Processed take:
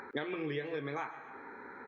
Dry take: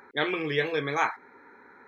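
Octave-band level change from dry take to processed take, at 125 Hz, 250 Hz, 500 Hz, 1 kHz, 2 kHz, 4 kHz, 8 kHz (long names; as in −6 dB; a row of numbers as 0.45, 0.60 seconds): −7.0 dB, −6.0 dB, −8.5 dB, −11.5 dB, −12.5 dB, −14.0 dB, can't be measured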